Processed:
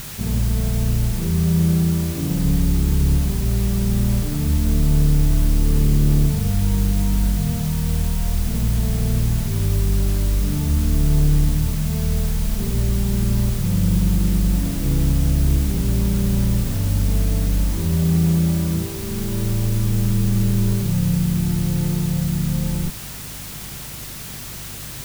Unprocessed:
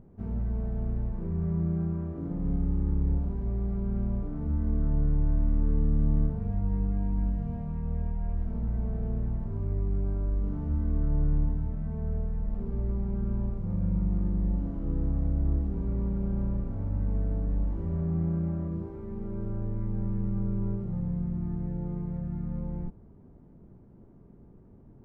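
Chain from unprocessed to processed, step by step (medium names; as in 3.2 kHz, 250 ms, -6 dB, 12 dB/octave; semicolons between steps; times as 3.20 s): hum 50 Hz, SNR 24 dB; peaking EQ 130 Hz +8.5 dB 0.59 oct; in parallel at -6 dB: sine folder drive 5 dB, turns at -12 dBFS; on the sum: word length cut 6-bit, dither triangular; trim +1.5 dB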